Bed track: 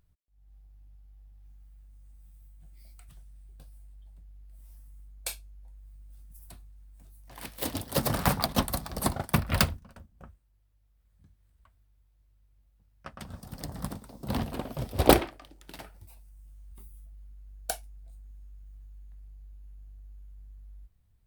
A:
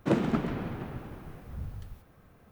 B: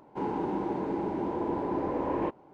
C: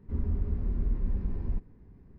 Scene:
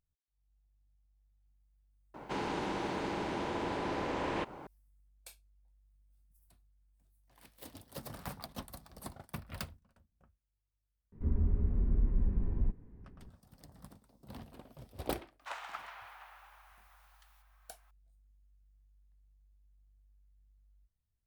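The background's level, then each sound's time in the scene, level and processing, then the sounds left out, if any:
bed track -18 dB
2.14 s: add B -5 dB + spectrum-flattening compressor 2:1
11.12 s: add C -0.5 dB + distance through air 330 m
15.40 s: add A -5 dB + steep high-pass 790 Hz

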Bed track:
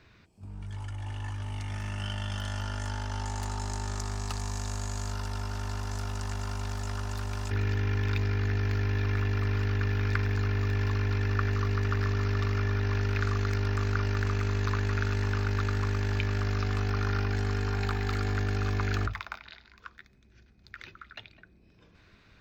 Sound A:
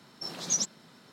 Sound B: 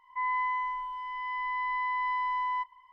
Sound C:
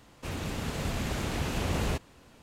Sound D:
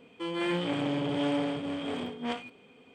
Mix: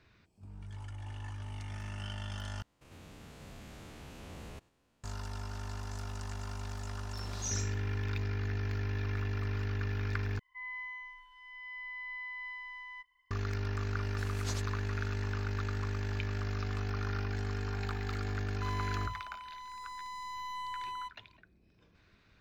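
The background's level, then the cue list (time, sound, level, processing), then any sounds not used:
bed track -6.5 dB
2.62 s: replace with C -16 dB + spectrogram pixelated in time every 100 ms
6.92 s: add A -13.5 dB + Schroeder reverb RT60 0.36 s, combs from 32 ms, DRR -2.5 dB
10.39 s: replace with B -5 dB + Chebyshev band-stop 420–1500 Hz
13.96 s: add A -14.5 dB + spectral peaks clipped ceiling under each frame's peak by 26 dB
18.45 s: add B -6.5 dB + median filter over 25 samples
not used: D

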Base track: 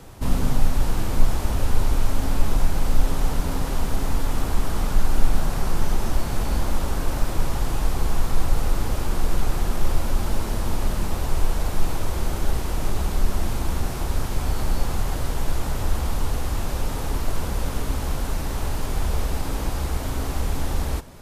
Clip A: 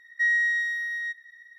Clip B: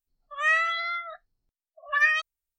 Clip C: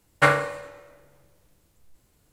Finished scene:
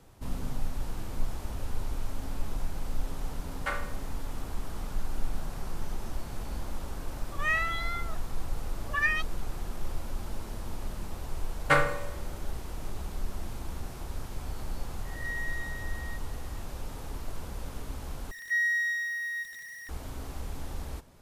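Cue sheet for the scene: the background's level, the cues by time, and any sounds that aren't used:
base track -13 dB
3.44 s: add C -14.5 dB + high-pass 600 Hz
7.01 s: add B -5.5 dB
11.48 s: add C -5 dB
15.05 s: add A -14 dB + reverse spectral sustain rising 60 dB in 0.62 s
18.31 s: replace with A -5 dB + jump at every zero crossing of -35.5 dBFS

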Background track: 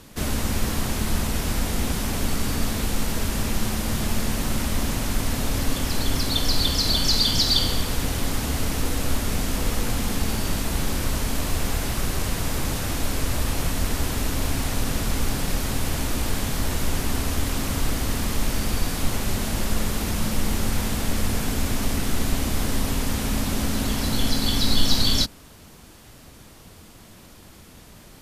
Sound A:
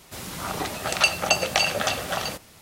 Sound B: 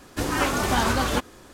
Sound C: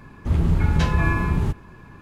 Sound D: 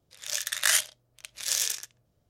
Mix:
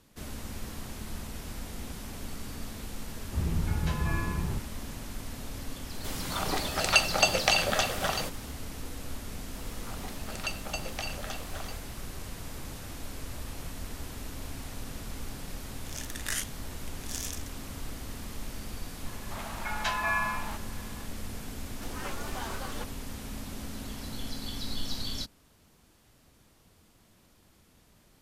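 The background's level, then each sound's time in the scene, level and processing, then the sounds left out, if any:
background track -15 dB
3.07 s: add C -10.5 dB
5.92 s: add A -2.5 dB
9.43 s: add A -15.5 dB
15.63 s: add D -10 dB + peaking EQ 4.1 kHz -5 dB 0.42 oct
19.05 s: add C -1.5 dB + steep high-pass 600 Hz 72 dB/octave
21.64 s: add B -15.5 dB + high-pass 330 Hz 24 dB/octave

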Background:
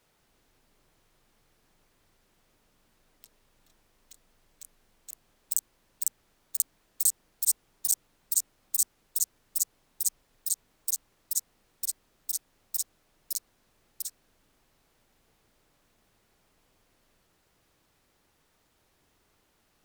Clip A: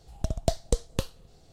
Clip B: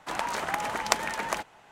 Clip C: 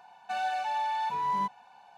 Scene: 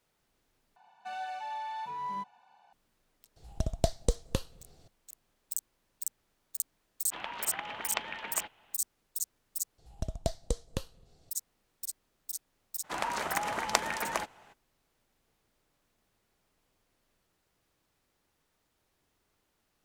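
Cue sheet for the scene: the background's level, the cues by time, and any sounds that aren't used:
background -7 dB
0.76 s: replace with C -7.5 dB
3.36 s: add A -2.5 dB
7.05 s: add B -11.5 dB + resonant low-pass 3.1 kHz, resonance Q 3.2
9.78 s: replace with A -6.5 dB
12.83 s: add B -2.5 dB, fades 0.02 s

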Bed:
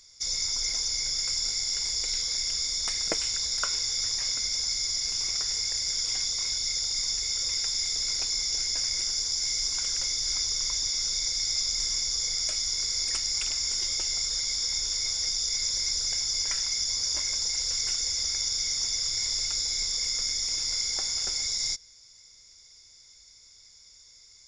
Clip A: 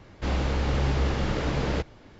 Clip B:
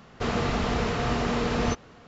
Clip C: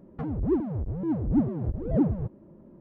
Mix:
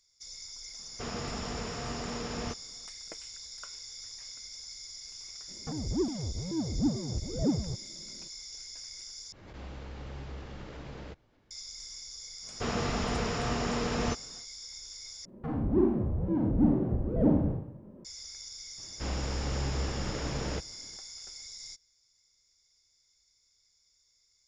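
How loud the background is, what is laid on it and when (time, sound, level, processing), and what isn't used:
bed -16 dB
0.79 s: add B -11 dB
5.48 s: add C -5 dB
9.32 s: replace with A -17.5 dB + swell ahead of each attack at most 55 dB/s
12.40 s: add B -5 dB, fades 0.10 s
15.25 s: replace with C -3.5 dB + Schroeder reverb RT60 0.66 s, combs from 30 ms, DRR -2 dB
18.78 s: add A -7.5 dB

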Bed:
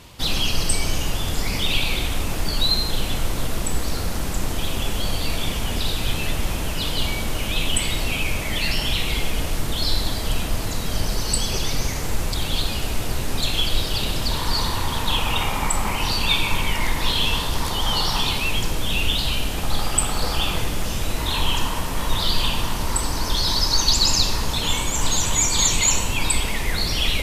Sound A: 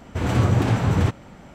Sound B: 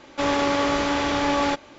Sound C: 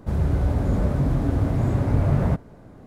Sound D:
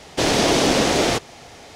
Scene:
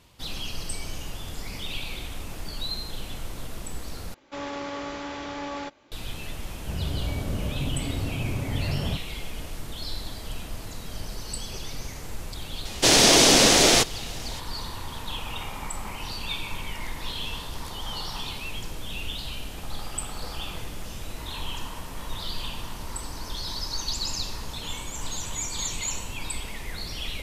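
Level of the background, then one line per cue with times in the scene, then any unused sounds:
bed -12 dB
4.14 s: replace with B -12 dB
6.61 s: add C -8.5 dB
12.65 s: add D -2.5 dB + treble shelf 2.9 kHz +12 dB
not used: A

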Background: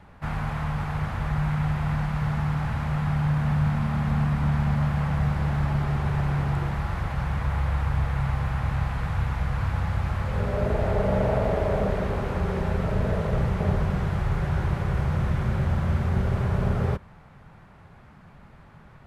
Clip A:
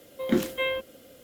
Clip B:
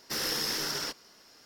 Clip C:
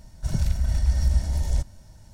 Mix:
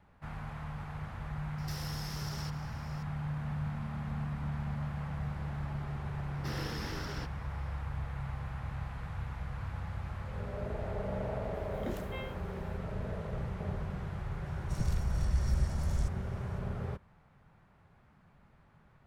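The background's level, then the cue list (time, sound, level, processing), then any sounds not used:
background -13 dB
1.58 s: add B -2 dB + compression, threshold -41 dBFS
6.34 s: add B -6 dB + tone controls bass +11 dB, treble -14 dB
11.54 s: add A -16.5 dB
14.46 s: add C -9 dB

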